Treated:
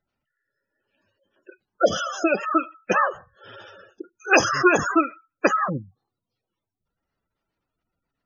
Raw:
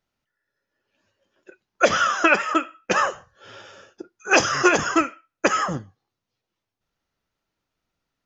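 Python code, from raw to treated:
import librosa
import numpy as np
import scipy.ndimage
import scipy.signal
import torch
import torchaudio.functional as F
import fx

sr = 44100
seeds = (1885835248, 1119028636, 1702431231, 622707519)

y = fx.band_shelf(x, sr, hz=1500.0, db=-9.5, octaves=1.7, at=(1.82, 2.42), fade=0.02)
y = fx.spec_gate(y, sr, threshold_db=-15, keep='strong')
y = y * 10.0 ** (1.0 / 20.0)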